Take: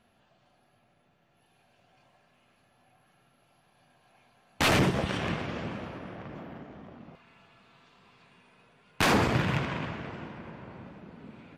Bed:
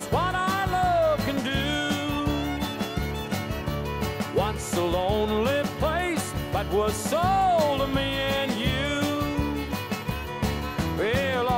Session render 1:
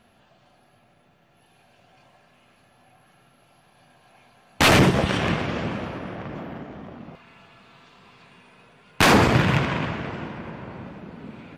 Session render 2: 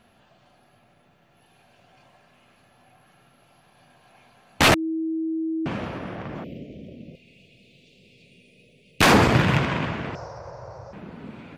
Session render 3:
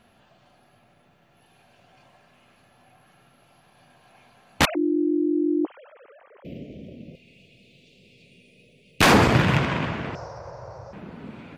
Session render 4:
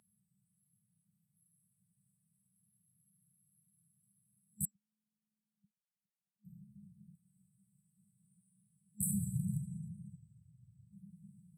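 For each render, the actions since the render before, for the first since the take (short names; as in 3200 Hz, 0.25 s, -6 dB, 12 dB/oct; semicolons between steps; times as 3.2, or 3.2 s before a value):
gain +8 dB
4.74–5.66 bleep 322 Hz -23.5 dBFS; 6.44–9.01 elliptic band-stop 560–2400 Hz; 10.15–10.93 EQ curve 120 Hz 0 dB, 240 Hz -28 dB, 540 Hz +5 dB, 1300 Hz -4 dB, 2000 Hz -13 dB, 3200 Hz -21 dB, 5500 Hz +15 dB, 11000 Hz -19 dB
4.65–6.45 sine-wave speech
FFT band-reject 210–7700 Hz; weighting filter A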